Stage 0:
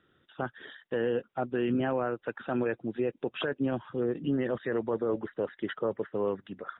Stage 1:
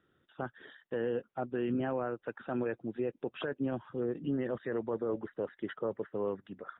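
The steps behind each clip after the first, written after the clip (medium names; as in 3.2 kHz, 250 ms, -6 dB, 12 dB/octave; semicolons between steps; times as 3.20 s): treble shelf 2.8 kHz -7.5 dB; trim -4 dB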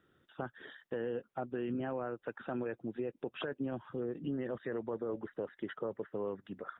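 compression 2:1, threshold -40 dBFS, peak gain reduction 6.5 dB; trim +2 dB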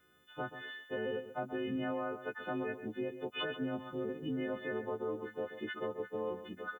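partials quantised in pitch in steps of 3 st; echo from a far wall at 23 m, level -11 dB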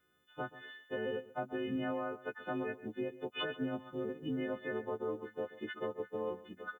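upward expansion 1.5:1, over -49 dBFS; trim +1 dB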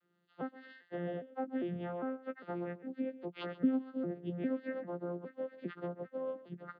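vocoder on a broken chord bare fifth, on F3, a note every 403 ms; trim +1.5 dB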